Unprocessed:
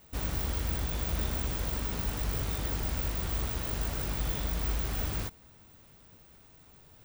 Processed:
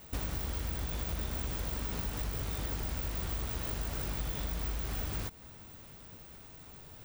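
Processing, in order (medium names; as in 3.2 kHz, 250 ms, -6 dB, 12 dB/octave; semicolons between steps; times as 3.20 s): compression 5:1, threshold -39 dBFS, peak gain reduction 11.5 dB; trim +5.5 dB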